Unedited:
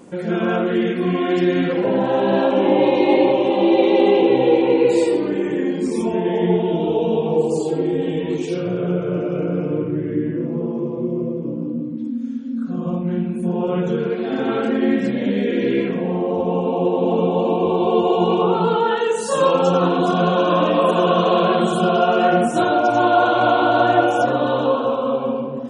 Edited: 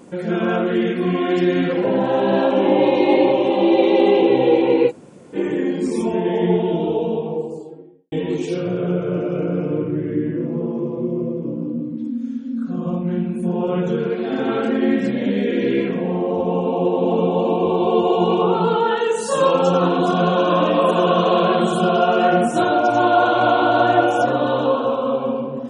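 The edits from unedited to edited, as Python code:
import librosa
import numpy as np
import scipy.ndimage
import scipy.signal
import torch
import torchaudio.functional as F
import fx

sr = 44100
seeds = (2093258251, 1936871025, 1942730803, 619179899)

y = fx.studio_fade_out(x, sr, start_s=6.58, length_s=1.54)
y = fx.edit(y, sr, fx.room_tone_fill(start_s=4.89, length_s=0.46, crossfade_s=0.06), tone=tone)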